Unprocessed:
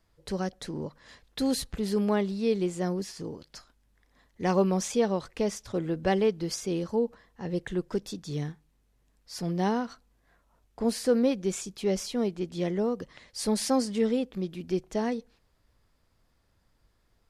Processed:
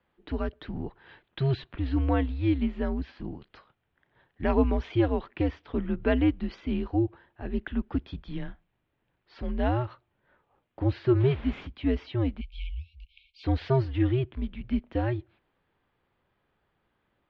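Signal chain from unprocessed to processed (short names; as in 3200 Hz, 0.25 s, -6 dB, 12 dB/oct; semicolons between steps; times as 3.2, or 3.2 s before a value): 11.19–11.66 added noise pink -44 dBFS; 12.4–13.44 spectral delete 210–2300 Hz; mistuned SSB -130 Hz 160–3400 Hz; gain +1.5 dB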